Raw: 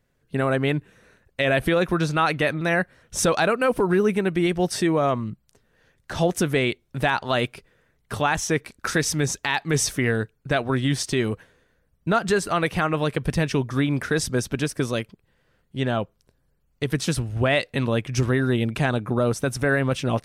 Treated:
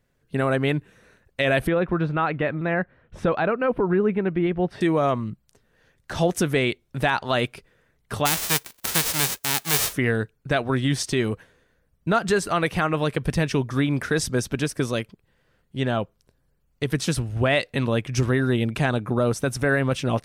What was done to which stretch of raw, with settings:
1.67–4.81 air absorption 500 m
8.25–9.92 spectral whitening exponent 0.1

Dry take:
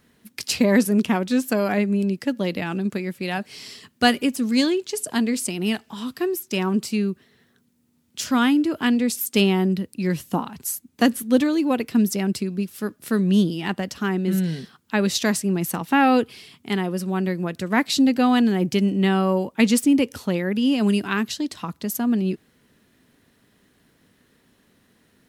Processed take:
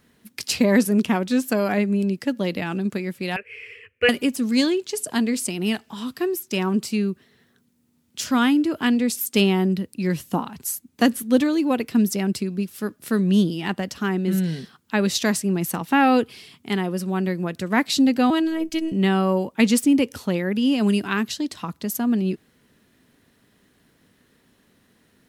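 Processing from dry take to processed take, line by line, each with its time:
3.36–4.09 EQ curve 100 Hz 0 dB, 160 Hz -25 dB, 320 Hz -19 dB, 470 Hz +10 dB, 710 Hz -24 dB, 2500 Hz +12 dB, 3900 Hz -27 dB, 9200 Hz -21 dB
18.3–18.92 robotiser 323 Hz

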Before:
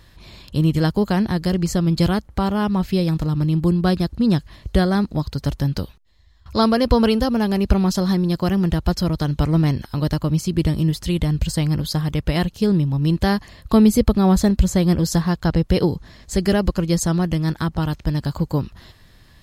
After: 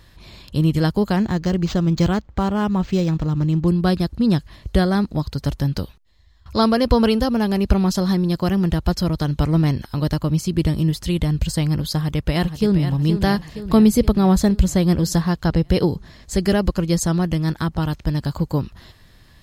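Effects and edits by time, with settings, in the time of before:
1.16–3.68 decimation joined by straight lines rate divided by 4×
11.96–12.88 echo throw 0.47 s, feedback 60%, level -9.5 dB

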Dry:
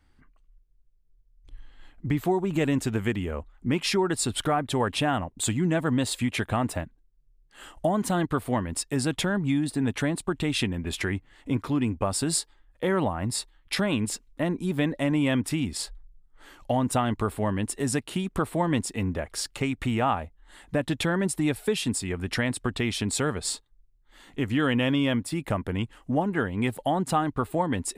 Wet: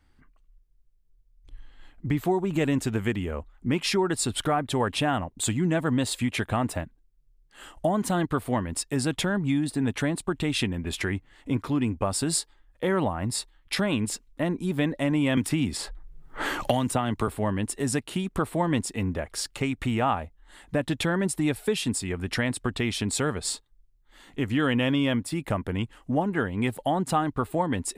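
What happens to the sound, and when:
15.37–17.28 three-band squash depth 100%

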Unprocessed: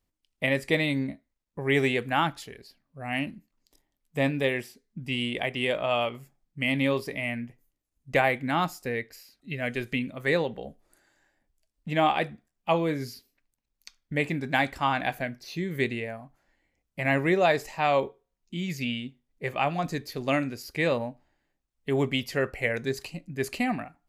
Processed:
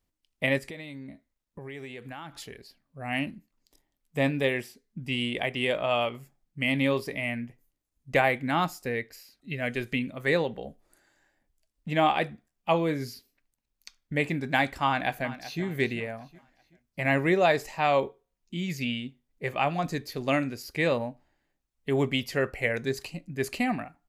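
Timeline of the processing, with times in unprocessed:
0.58–2.35 compressor, threshold -38 dBFS
14.86–15.62 echo throw 0.38 s, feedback 40%, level -14.5 dB

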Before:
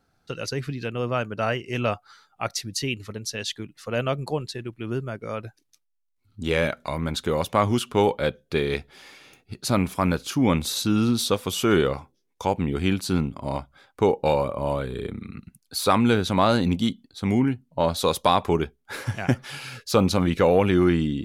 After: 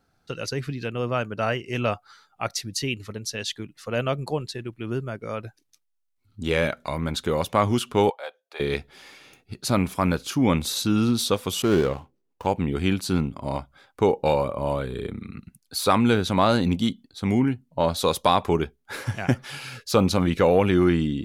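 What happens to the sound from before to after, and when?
8.1–8.6 ladder high-pass 640 Hz, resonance 55%
11.62–12.47 median filter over 25 samples

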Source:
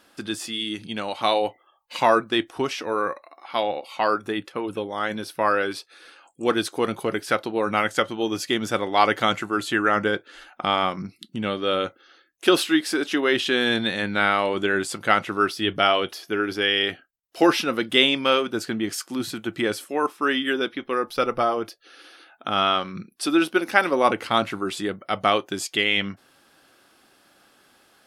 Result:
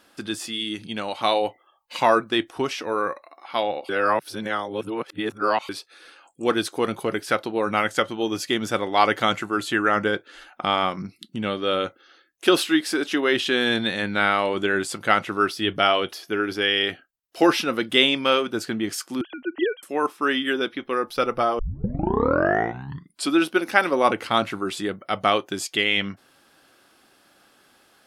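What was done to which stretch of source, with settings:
3.89–5.69 reverse
19.21–19.83 sine-wave speech
21.59 tape start 1.76 s

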